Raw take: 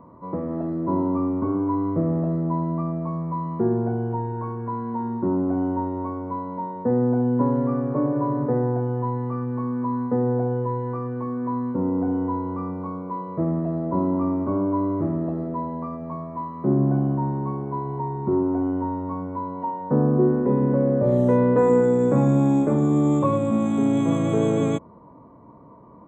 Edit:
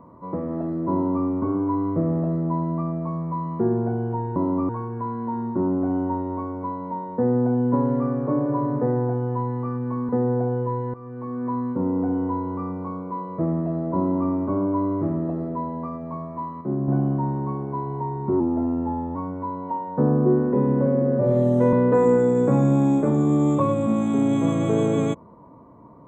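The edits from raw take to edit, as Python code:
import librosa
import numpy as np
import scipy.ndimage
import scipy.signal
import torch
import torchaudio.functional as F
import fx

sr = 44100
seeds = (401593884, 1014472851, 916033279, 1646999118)

y = fx.edit(x, sr, fx.duplicate(start_s=0.93, length_s=0.33, to_s=4.36),
    fx.cut(start_s=9.76, length_s=0.32),
    fx.fade_in_from(start_s=10.93, length_s=0.51, floor_db=-15.5),
    fx.clip_gain(start_s=16.6, length_s=0.27, db=-5.5),
    fx.speed_span(start_s=18.39, length_s=0.69, speed=0.92),
    fx.stretch_span(start_s=20.79, length_s=0.58, factor=1.5), tone=tone)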